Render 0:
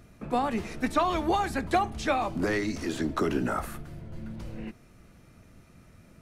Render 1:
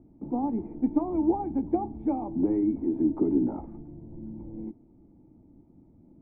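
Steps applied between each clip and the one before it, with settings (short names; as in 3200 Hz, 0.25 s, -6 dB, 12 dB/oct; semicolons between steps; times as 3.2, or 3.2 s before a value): vocal tract filter u; gain +9 dB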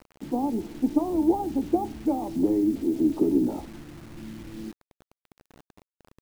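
dynamic EQ 490 Hz, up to +5 dB, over -38 dBFS, Q 1.2; bit-crush 8-bit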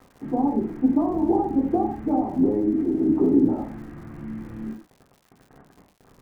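LPF 1900 Hz 24 dB/oct; non-linear reverb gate 0.17 s falling, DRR -2.5 dB; crackle 170/s -45 dBFS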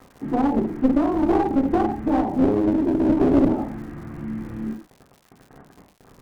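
one-sided clip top -24 dBFS; gain +4 dB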